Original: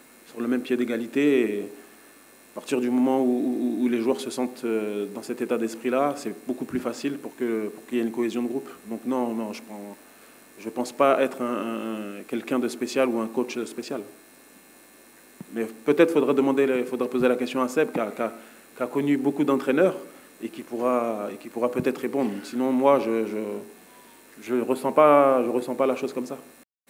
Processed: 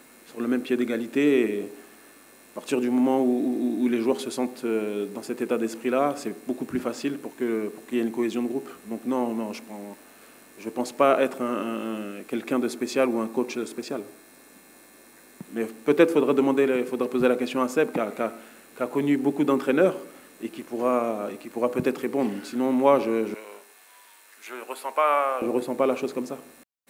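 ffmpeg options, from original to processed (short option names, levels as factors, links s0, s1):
-filter_complex "[0:a]asettb=1/sr,asplit=3[s0][s1][s2];[s0]atrim=end=12.434[s3];[s1]atrim=start=12.43:end=15.43,asetpts=PTS-STARTPTS,afade=t=in:d=0.004:c=qsin,afade=t=out:st=2.996:d=0.004:c=qsin,bandreject=f=2900:w=11[s4];[s2]atrim=start=15.426[s5];[s3][s4]acrossfade=d=0.004:c1=hsin:c2=qsin[s6];[s6][s5]acrossfade=d=0.004:c1=qsin:c2=hsin,asettb=1/sr,asplit=3[s7][s8][s9];[s7]atrim=end=23.344[s10];[s8]atrim=start=23.34:end=25.42,asetpts=PTS-STARTPTS,afade=t=in:d=0.004:c=qsin,afade=t=out:st=2.076:d=0.004:c=qsin,highpass=910[s11];[s9]atrim=start=25.416[s12];[s10][s11]acrossfade=d=0.004:c1=hsin:c2=qsin[s13];[s13][s12]acrossfade=d=0.004:c1=qsin:c2=hsin"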